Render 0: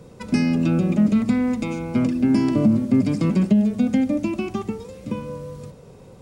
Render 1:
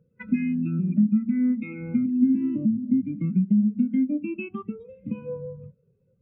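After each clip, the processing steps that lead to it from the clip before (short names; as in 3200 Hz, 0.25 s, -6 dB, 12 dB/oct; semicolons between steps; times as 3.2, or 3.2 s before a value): band shelf 2100 Hz +11 dB; compressor 16:1, threshold -27 dBFS, peak gain reduction 16 dB; spectral expander 2.5:1; gain +7 dB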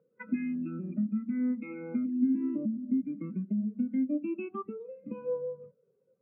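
Butterworth band-pass 740 Hz, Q 0.61; gain +1.5 dB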